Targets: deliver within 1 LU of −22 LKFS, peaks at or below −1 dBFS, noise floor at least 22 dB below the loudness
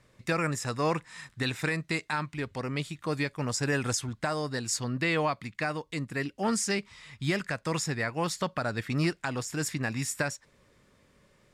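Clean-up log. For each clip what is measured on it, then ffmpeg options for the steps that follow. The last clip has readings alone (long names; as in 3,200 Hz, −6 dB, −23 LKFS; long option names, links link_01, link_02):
integrated loudness −31.0 LKFS; sample peak −17.0 dBFS; target loudness −22.0 LKFS
→ -af "volume=9dB"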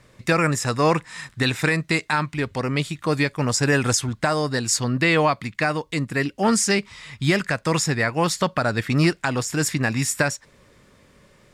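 integrated loudness −22.0 LKFS; sample peak −8.0 dBFS; background noise floor −56 dBFS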